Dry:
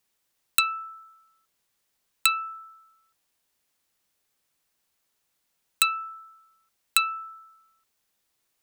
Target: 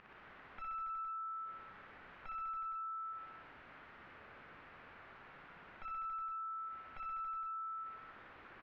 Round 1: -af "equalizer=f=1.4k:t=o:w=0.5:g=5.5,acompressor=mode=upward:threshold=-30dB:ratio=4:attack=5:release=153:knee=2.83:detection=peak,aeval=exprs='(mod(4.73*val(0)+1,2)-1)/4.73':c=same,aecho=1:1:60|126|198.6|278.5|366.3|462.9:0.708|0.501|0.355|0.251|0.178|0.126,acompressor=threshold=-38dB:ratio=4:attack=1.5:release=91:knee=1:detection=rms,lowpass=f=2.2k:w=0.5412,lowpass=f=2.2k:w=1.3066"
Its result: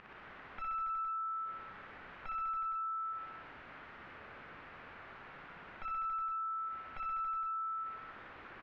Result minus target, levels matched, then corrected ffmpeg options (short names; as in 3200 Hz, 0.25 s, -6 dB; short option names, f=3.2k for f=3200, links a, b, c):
compressor: peak gain reduction -5 dB
-af "equalizer=f=1.4k:t=o:w=0.5:g=5.5,acompressor=mode=upward:threshold=-30dB:ratio=4:attack=5:release=153:knee=2.83:detection=peak,aeval=exprs='(mod(4.73*val(0)+1,2)-1)/4.73':c=same,aecho=1:1:60|126|198.6|278.5|366.3|462.9:0.708|0.501|0.355|0.251|0.178|0.126,acompressor=threshold=-44.5dB:ratio=4:attack=1.5:release=91:knee=1:detection=rms,lowpass=f=2.2k:w=0.5412,lowpass=f=2.2k:w=1.3066"